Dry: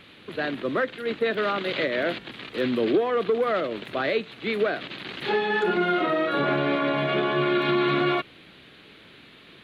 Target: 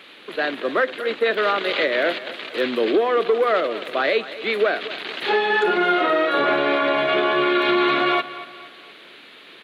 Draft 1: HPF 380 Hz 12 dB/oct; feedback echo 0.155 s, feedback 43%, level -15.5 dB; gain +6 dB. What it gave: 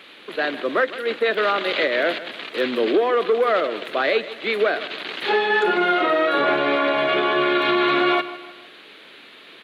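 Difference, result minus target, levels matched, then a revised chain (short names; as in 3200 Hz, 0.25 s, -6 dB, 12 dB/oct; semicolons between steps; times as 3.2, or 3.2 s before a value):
echo 80 ms early
HPF 380 Hz 12 dB/oct; feedback echo 0.235 s, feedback 43%, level -15.5 dB; gain +6 dB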